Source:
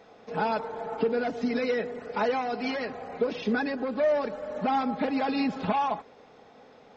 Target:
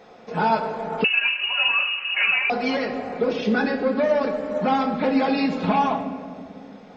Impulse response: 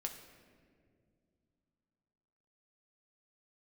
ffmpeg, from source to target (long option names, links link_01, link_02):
-filter_complex "[1:a]atrim=start_sample=2205[link_01];[0:a][link_01]afir=irnorm=-1:irlink=0,asettb=1/sr,asplit=3[link_02][link_03][link_04];[link_02]atrim=end=1.044[link_05];[link_03]atrim=start=1.04:end=2.5,asetpts=PTS-STARTPTS,afade=type=in:duration=0.004:curve=qsin,afade=type=out:start_time=1.456:duration=0.004:curve=qsin,lowpass=frequency=2600:width_type=q:width=0.5098,lowpass=frequency=2600:width_type=q:width=0.6013,lowpass=frequency=2600:width_type=q:width=0.9,lowpass=frequency=2600:width_type=q:width=2.563,afreqshift=-3100[link_06];[link_04]atrim=start=2.496[link_07];[link_05][link_06]acrossfade=duration=0.004:curve1=hsin:curve2=qsin[link_08];[link_08][link_07]acrossfade=duration=0.004:curve1=qsin:curve2=hsin,volume=7.5dB"